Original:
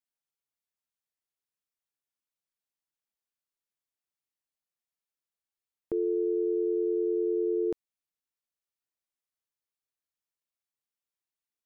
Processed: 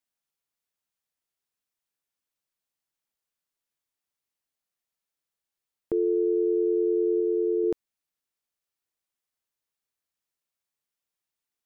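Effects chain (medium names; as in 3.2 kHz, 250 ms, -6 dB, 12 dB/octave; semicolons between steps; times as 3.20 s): 7.20–7.64 s: bass shelf 140 Hz -9 dB; trim +4 dB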